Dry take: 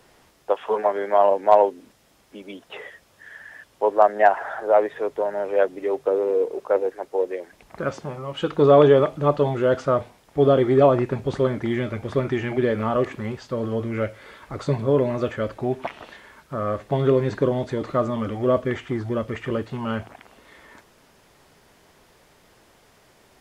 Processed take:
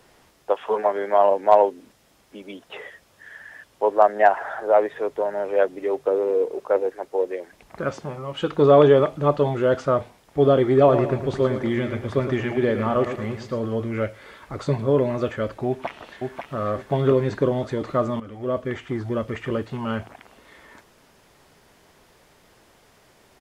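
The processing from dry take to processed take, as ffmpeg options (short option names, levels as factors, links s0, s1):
-filter_complex "[0:a]asettb=1/sr,asplit=3[s0][s1][s2];[s0]atrim=end=10.774[s3];[s1]atrim=start=10.77:end=13.59,asetpts=PTS-STARTPTS,afade=t=in:d=0.004:c=qsin,afade=t=out:st=2.816:d=0.004:c=qsin,aecho=1:1:111|222|333|444|555:0.316|0.142|0.064|0.0288|0.013,atrim=end_sample=124362[s4];[s2]atrim=start=13.586[s5];[s3][s4]acrossfade=d=0.004:c1=hsin:c2=qsin[s6];[s6][s5]acrossfade=d=0.004:c1=qsin:c2=hsin,asplit=2[s7][s8];[s8]afade=t=in:st=15.67:d=0.01,afade=t=out:st=16.59:d=0.01,aecho=0:1:540|1080|1620|2160:0.595662|0.178699|0.0536096|0.0160829[s9];[s7][s9]amix=inputs=2:normalize=0,asplit=2[s10][s11];[s10]atrim=end=18.2,asetpts=PTS-STARTPTS,afade=t=out:st=18.196:d=0.004:c=hsin:silence=0.199526[s12];[s11]atrim=start=18.2,asetpts=PTS-STARTPTS,afade=t=in:d=1.14:c=qsin:silence=0.199526[s13];[s12][s13]concat=n=2:v=0:a=1"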